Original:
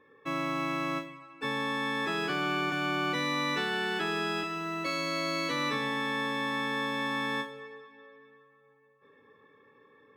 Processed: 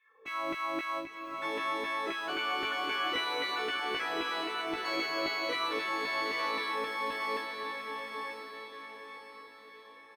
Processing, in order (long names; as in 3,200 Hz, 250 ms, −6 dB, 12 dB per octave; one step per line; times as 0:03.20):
EQ curve with evenly spaced ripples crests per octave 1.9, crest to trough 8 dB
auto-filter high-pass saw down 3.8 Hz 340–2,500 Hz
double-tracking delay 18 ms −4.5 dB
feedback delay with all-pass diffusion 931 ms, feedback 42%, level −4 dB
level −6 dB